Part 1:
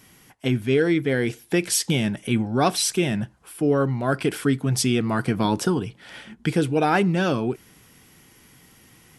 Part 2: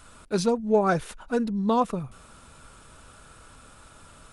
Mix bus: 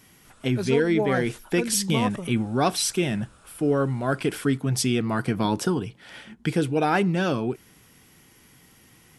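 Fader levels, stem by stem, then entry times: -2.0, -5.0 dB; 0.00, 0.25 s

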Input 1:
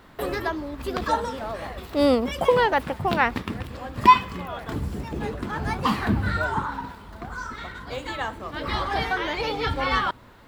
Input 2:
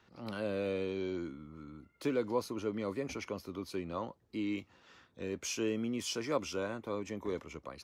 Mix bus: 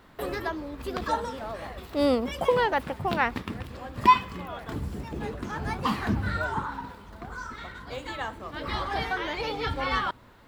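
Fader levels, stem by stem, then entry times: -4.0, -18.5 dB; 0.00, 0.00 s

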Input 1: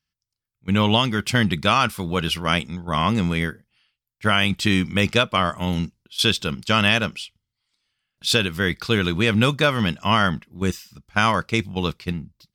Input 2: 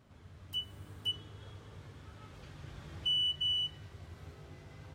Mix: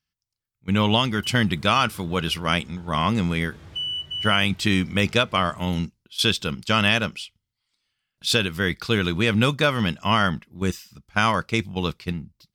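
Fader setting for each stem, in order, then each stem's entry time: -1.5, +2.5 dB; 0.00, 0.70 s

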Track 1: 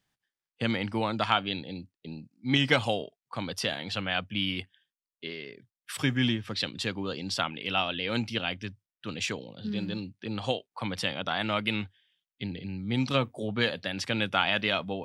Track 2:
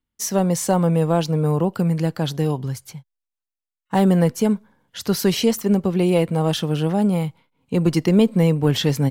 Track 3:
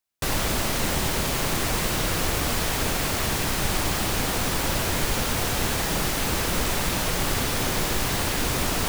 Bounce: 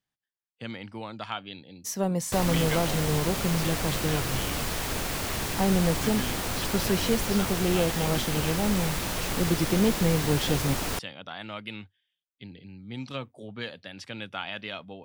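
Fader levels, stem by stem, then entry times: -9.0, -8.0, -5.5 dB; 0.00, 1.65, 2.10 s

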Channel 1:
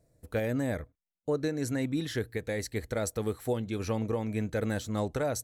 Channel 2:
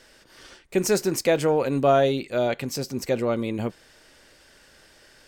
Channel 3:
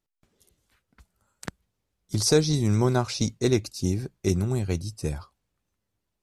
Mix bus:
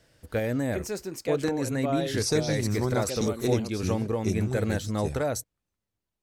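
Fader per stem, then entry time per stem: +2.5, -11.5, -5.5 dB; 0.00, 0.00, 0.00 s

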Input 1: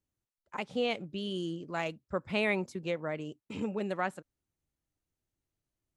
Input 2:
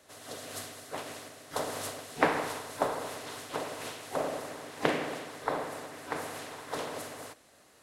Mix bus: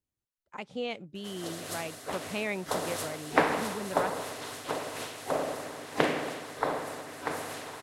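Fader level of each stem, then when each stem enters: -3.5, +2.0 dB; 0.00, 1.15 s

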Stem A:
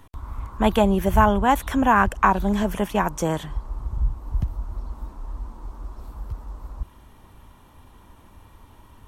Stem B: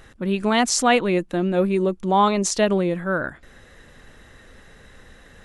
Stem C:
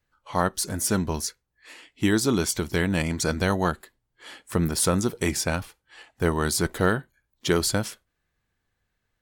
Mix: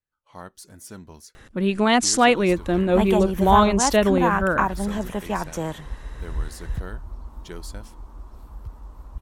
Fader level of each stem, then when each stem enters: -4.5, +1.0, -16.5 dB; 2.35, 1.35, 0.00 s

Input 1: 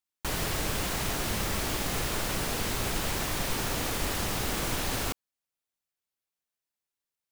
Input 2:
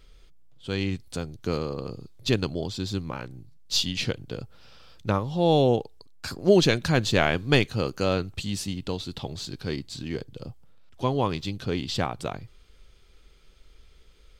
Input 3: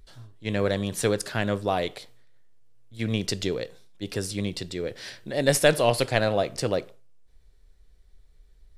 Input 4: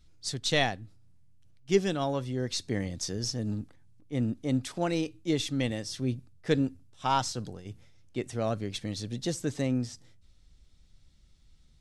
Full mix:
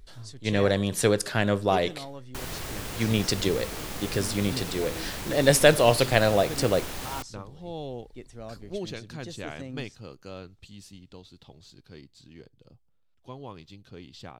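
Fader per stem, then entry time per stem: -5.5, -16.5, +2.0, -11.0 dB; 2.10, 2.25, 0.00, 0.00 s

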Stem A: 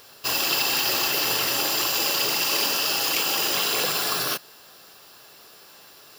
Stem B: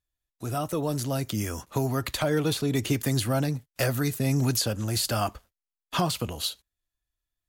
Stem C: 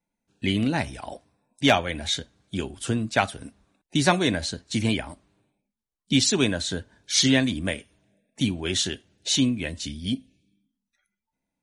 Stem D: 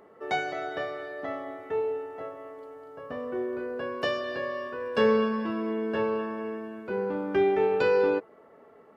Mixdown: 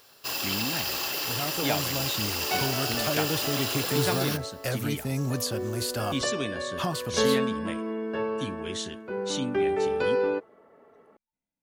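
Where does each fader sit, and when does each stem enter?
-7.0, -4.5, -10.0, -2.0 dB; 0.00, 0.85, 0.00, 2.20 s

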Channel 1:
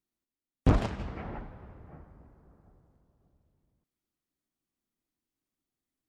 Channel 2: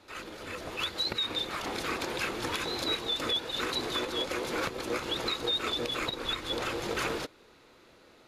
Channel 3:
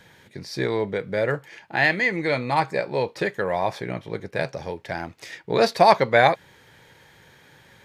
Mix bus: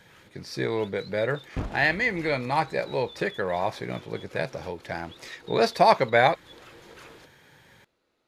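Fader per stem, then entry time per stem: -8.5, -16.5, -3.0 dB; 0.90, 0.00, 0.00 s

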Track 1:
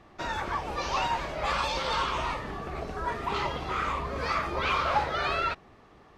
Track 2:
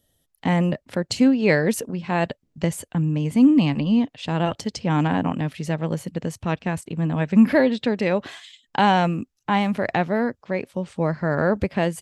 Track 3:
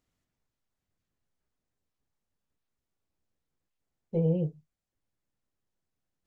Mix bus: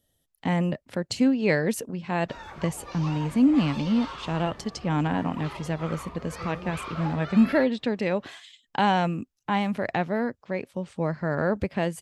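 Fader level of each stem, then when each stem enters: -10.0, -4.5, -13.0 dB; 2.10, 0.00, 2.25 s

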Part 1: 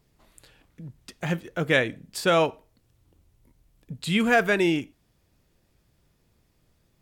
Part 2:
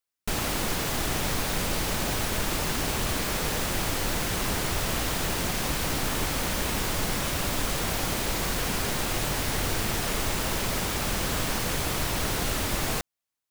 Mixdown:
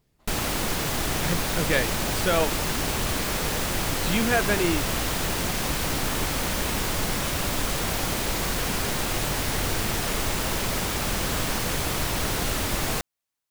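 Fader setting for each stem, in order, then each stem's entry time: -3.0, +1.5 dB; 0.00, 0.00 s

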